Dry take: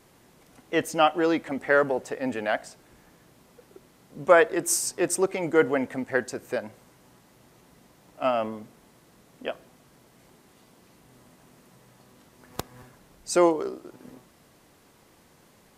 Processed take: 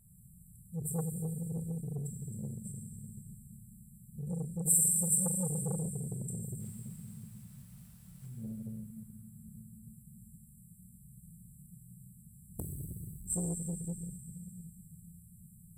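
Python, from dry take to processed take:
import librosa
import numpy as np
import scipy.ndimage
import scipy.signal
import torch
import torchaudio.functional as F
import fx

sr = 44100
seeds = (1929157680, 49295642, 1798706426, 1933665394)

y = fx.dynamic_eq(x, sr, hz=170.0, q=7.4, threshold_db=-51.0, ratio=4.0, max_db=4)
y = fx.brickwall_bandstop(y, sr, low_hz=210.0, high_hz=7400.0)
y = fx.low_shelf(y, sr, hz=240.0, db=3.0)
y = fx.quant_companded(y, sr, bits=6, at=(6.6, 8.26))
y = fx.rev_plate(y, sr, seeds[0], rt60_s=4.4, hf_ratio=0.65, predelay_ms=0, drr_db=-3.5)
y = fx.transformer_sat(y, sr, knee_hz=1300.0)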